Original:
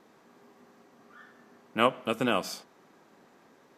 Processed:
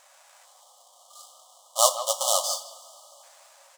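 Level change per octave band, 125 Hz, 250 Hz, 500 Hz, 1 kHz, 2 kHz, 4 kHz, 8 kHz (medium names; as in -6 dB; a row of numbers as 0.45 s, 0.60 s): under -40 dB, under -40 dB, +2.0 dB, +3.0 dB, under -20 dB, +8.5 dB, +22.5 dB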